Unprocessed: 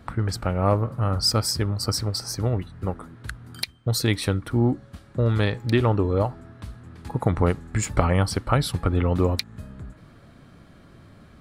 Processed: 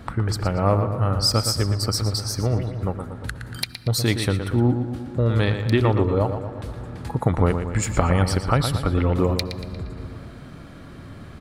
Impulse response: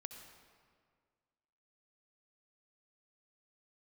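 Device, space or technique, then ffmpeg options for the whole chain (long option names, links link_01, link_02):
ducked reverb: -filter_complex "[0:a]asplit=2[link_01][link_02];[link_02]adelay=117,lowpass=frequency=4600:poles=1,volume=-8dB,asplit=2[link_03][link_04];[link_04]adelay=117,lowpass=frequency=4600:poles=1,volume=0.52,asplit=2[link_05][link_06];[link_06]adelay=117,lowpass=frequency=4600:poles=1,volume=0.52,asplit=2[link_07][link_08];[link_08]adelay=117,lowpass=frequency=4600:poles=1,volume=0.52,asplit=2[link_09][link_10];[link_10]adelay=117,lowpass=frequency=4600:poles=1,volume=0.52,asplit=2[link_11][link_12];[link_12]adelay=117,lowpass=frequency=4600:poles=1,volume=0.52[link_13];[link_01][link_03][link_05][link_07][link_09][link_11][link_13]amix=inputs=7:normalize=0,asplit=3[link_14][link_15][link_16];[1:a]atrim=start_sample=2205[link_17];[link_15][link_17]afir=irnorm=-1:irlink=0[link_18];[link_16]apad=whole_len=533987[link_19];[link_18][link_19]sidechaincompress=threshold=-38dB:ratio=8:attack=6.1:release=402,volume=8dB[link_20];[link_14][link_20]amix=inputs=2:normalize=0"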